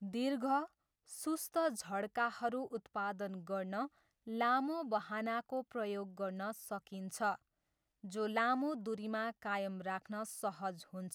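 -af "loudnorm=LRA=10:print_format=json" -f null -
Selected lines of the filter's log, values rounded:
"input_i" : "-39.2",
"input_tp" : "-21.5",
"input_lra" : "1.2",
"input_thresh" : "-49.4",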